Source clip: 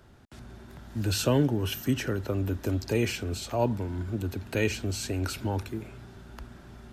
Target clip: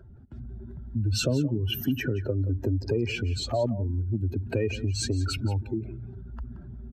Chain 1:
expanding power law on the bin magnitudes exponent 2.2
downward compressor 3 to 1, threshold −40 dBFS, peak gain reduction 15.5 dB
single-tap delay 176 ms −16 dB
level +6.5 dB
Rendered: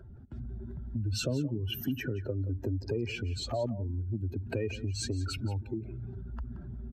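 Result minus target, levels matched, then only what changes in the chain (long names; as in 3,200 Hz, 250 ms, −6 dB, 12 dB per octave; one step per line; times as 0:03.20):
downward compressor: peak gain reduction +6 dB
change: downward compressor 3 to 1, threshold −31 dBFS, peak gain reduction 9.5 dB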